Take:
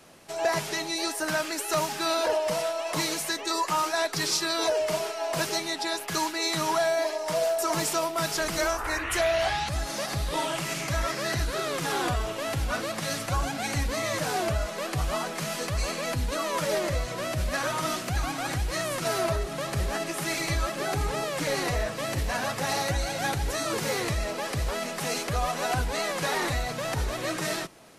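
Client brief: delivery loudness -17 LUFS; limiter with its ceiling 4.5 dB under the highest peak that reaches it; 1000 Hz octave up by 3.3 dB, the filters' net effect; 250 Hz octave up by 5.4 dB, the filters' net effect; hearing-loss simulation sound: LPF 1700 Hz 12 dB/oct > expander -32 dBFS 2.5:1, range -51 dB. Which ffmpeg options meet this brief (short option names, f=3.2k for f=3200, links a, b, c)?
-af "equalizer=f=250:t=o:g=7.5,equalizer=f=1k:t=o:g=4.5,alimiter=limit=-16.5dB:level=0:latency=1,lowpass=1.7k,agate=range=-51dB:threshold=-32dB:ratio=2.5,volume=11dB"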